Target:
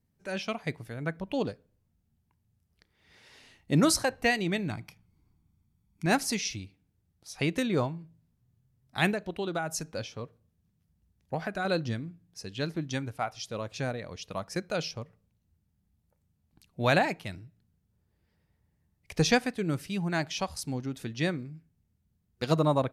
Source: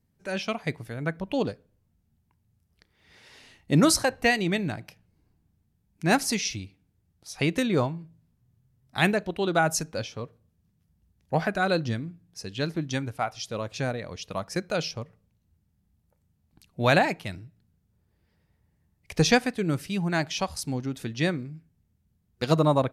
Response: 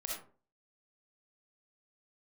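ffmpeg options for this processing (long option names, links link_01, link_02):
-filter_complex "[0:a]asettb=1/sr,asplit=3[link_01][link_02][link_03];[link_01]atrim=end=4.704[link_04];[link_02]atrim=start=4.7:end=6.06,asetpts=PTS-STARTPTS,afade=type=in:duration=0.004:curve=qsin,afade=type=out:start_time=1.356:duration=0.004:curve=qsin,aecho=1:1:0.9:0.53,atrim=end_sample=59976[link_05];[link_03]atrim=start=6.056[link_06];[link_04][link_05]acrossfade=duration=0.004:curve1=hsin:curve2=qsin[link_07];[link_07][link_06]acrossfade=duration=0.004:curve1=qsin:curve2=hsin,asettb=1/sr,asplit=3[link_08][link_09][link_10];[link_08]atrim=end=9.124[link_11];[link_09]atrim=start=9.12:end=11.65,asetpts=PTS-STARTPTS,afade=type=in:duration=0.004:curve=qsin,afade=type=out:start_time=2.526:duration=0.004:curve=qsin,acompressor=threshold=-25dB:ratio=6[link_12];[link_10]atrim=start=11.646[link_13];[link_11][link_12]acrossfade=duration=0.004:curve1=hsin:curve2=qsin[link_14];[link_14][link_13]acrossfade=duration=0.004:curve1=qsin:curve2=hsin,volume=-3.5dB"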